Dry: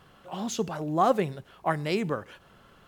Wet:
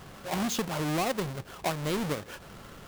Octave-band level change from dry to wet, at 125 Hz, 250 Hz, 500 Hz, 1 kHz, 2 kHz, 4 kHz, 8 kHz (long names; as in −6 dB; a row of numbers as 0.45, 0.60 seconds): 0.0, −1.0, −4.5, −5.5, +0.5, +3.5, +3.5 decibels